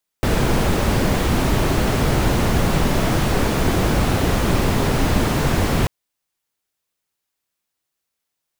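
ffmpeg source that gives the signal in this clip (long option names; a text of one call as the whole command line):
ffmpeg -f lavfi -i "anoisesrc=color=brown:amplitude=0.661:duration=5.64:sample_rate=44100:seed=1" out.wav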